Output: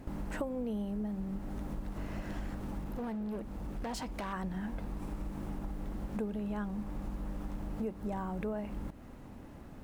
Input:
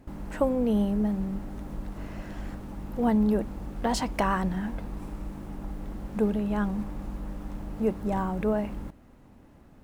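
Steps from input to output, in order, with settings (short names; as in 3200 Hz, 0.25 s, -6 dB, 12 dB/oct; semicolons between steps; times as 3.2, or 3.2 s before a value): compressor 5:1, threshold -40 dBFS, peak gain reduction 18.5 dB; 2.81–4.33 hard clip -39 dBFS, distortion -18 dB; gain +4.5 dB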